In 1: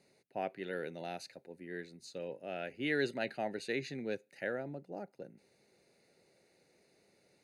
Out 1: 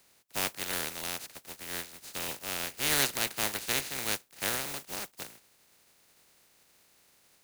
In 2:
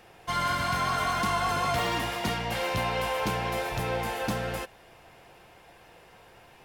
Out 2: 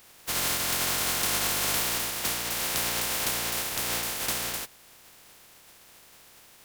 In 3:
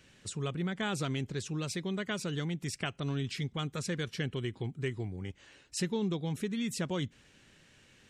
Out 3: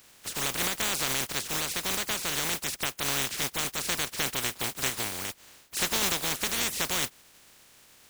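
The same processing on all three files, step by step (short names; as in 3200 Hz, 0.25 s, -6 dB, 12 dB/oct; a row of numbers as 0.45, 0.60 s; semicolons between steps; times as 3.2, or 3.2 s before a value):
spectral contrast lowered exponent 0.16; normalise peaks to -12 dBFS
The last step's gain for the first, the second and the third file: +6.0, +0.5, +5.0 dB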